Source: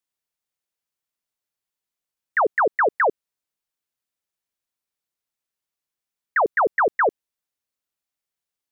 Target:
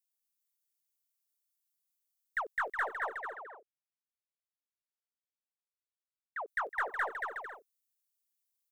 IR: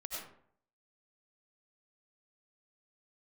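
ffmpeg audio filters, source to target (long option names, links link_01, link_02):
-filter_complex "[0:a]aderivative,aeval=exprs='0.0562*(cos(1*acos(clip(val(0)/0.0562,-1,1)))-cos(1*PI/2))+0.00251*(cos(2*acos(clip(val(0)/0.0562,-1,1)))-cos(2*PI/2))+0.00141*(cos(7*acos(clip(val(0)/0.0562,-1,1)))-cos(7*PI/2))':channel_layout=same,asettb=1/sr,asplit=3[link_01][link_02][link_03];[link_01]atrim=end=2.944[link_04];[link_02]atrim=start=2.94:end=6.48,asetpts=PTS-STARTPTS,afade=type=in:duration=0.004:curve=qsin,afade=type=out:start_time=3.536:duration=0.004:curve=qsin,bandpass=frequency=600:width_type=q:width=0.82:csg=0[link_05];[link_03]atrim=start=6.476[link_06];[link_04][link_05]acrossfade=duration=0.004:curve1=hsin:curve2=qsin[link_07];[link_07][link_06]acrossfade=duration=0.004:curve1=qsin:curve2=hsin,aecho=1:1:230|368|450.8|500.5|530.3:0.631|0.398|0.251|0.158|0.1"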